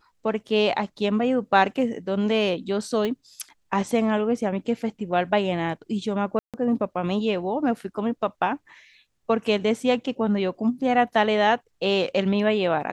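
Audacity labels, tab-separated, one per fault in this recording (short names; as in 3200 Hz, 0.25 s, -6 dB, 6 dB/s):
3.050000	3.050000	pop -15 dBFS
6.390000	6.540000	gap 0.147 s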